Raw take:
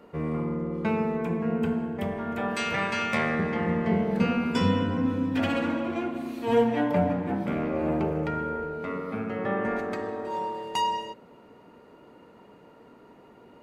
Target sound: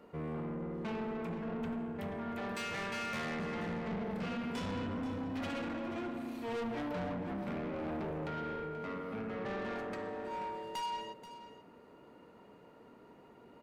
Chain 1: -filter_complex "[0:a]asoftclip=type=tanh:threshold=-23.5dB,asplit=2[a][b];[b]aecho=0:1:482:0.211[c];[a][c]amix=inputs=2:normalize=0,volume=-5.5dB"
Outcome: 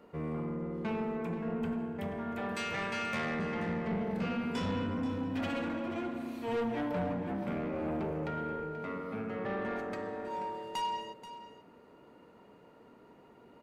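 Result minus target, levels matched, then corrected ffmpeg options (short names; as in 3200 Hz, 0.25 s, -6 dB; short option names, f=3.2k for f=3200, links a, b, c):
soft clip: distortion -5 dB
-filter_complex "[0:a]asoftclip=type=tanh:threshold=-30dB,asplit=2[a][b];[b]aecho=0:1:482:0.211[c];[a][c]amix=inputs=2:normalize=0,volume=-5.5dB"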